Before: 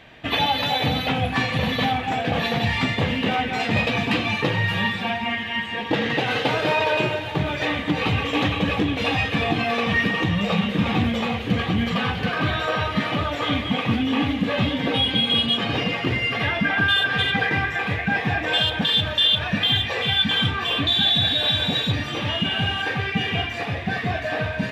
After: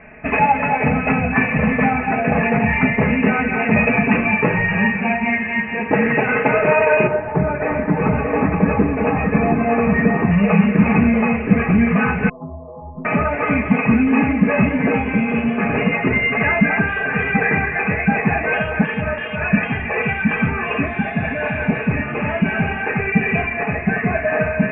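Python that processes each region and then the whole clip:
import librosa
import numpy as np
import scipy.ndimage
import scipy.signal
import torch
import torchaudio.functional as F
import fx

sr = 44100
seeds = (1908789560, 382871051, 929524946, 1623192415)

y = fx.chain(x, sr, fx.lowpass(hz=1400.0, slope=12),
    fx.echo_single(ms=640, db=-6.0), at=(7.07, 10.31))
y = fx.chain(y, sr, fx.brickwall_lowpass(high_hz=1200.0),
    fx.stiff_resonator(f0_hz=76.0, decay_s=0.78, stiffness=0.03),
    fx.doppler_dist(depth_ms=0.1), at=(12.29, 13.05))
y = scipy.signal.sosfilt(scipy.signal.cheby1(8, 1.0, 2600.0, 'lowpass', fs=sr, output='sos'), y)
y = fx.low_shelf(y, sr, hz=110.0, db=4.5)
y = y + 0.68 * np.pad(y, (int(4.7 * sr / 1000.0), 0))[:len(y)]
y = y * 10.0 ** (5.0 / 20.0)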